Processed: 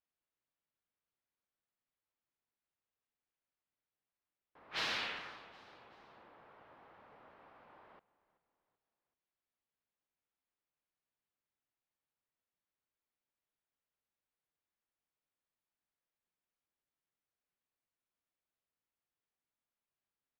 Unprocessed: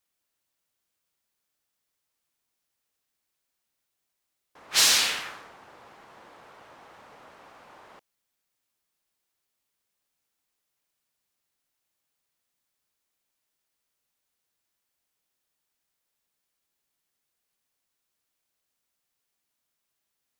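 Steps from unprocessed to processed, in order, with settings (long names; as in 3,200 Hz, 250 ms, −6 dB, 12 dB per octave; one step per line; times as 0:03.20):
high-frequency loss of the air 340 metres
on a send: echo with shifted repeats 382 ms, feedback 45%, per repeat −31 Hz, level −20 dB
on the sum: level −8 dB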